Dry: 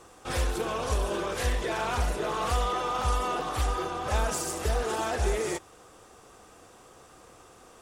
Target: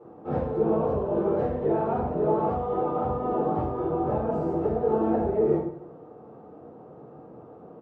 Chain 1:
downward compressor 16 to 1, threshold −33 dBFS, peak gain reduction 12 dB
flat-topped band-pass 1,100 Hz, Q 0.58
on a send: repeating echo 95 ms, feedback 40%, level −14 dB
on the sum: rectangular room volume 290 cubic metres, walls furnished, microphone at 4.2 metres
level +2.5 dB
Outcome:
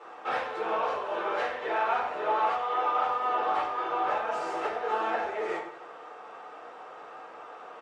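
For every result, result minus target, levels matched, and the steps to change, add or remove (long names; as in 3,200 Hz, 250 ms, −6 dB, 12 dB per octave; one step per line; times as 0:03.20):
250 Hz band −13.5 dB; downward compressor: peak gain reduction +6 dB
change: flat-topped band-pass 290 Hz, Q 0.58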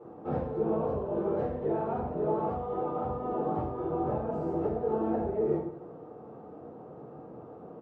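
downward compressor: peak gain reduction +6 dB
change: downward compressor 16 to 1, threshold −26.5 dBFS, peak gain reduction 6 dB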